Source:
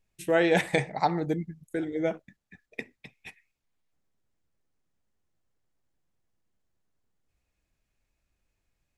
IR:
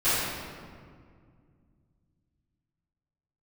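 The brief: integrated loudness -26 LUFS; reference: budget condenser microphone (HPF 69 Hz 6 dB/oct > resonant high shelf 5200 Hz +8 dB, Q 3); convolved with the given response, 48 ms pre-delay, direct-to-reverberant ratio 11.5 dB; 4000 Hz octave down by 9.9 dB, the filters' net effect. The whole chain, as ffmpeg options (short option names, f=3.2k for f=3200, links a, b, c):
-filter_complex "[0:a]equalizer=f=4k:t=o:g=-8.5,asplit=2[a][b];[1:a]atrim=start_sample=2205,adelay=48[c];[b][c]afir=irnorm=-1:irlink=0,volume=-27dB[d];[a][d]amix=inputs=2:normalize=0,highpass=f=69:p=1,highshelf=f=5.2k:t=q:w=3:g=8,volume=2dB"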